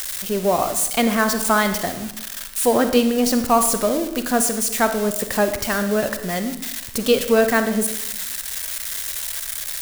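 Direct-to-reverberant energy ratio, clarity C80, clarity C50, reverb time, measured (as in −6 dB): 8.0 dB, 11.0 dB, 9.0 dB, 0.85 s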